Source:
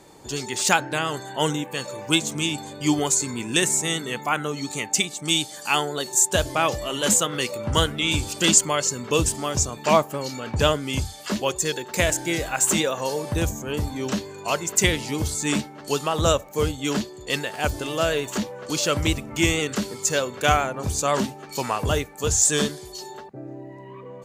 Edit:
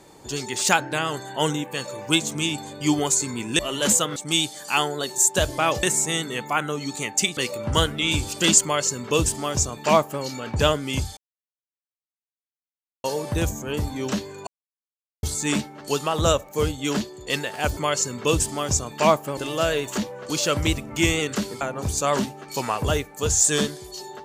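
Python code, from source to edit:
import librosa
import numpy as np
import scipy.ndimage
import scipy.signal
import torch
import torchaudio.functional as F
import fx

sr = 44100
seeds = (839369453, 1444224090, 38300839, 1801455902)

y = fx.edit(x, sr, fx.swap(start_s=3.59, length_s=1.54, other_s=6.8, other_length_s=0.57),
    fx.duplicate(start_s=8.63, length_s=1.6, to_s=17.77),
    fx.silence(start_s=11.17, length_s=1.87),
    fx.silence(start_s=14.47, length_s=0.76),
    fx.cut(start_s=20.01, length_s=0.61), tone=tone)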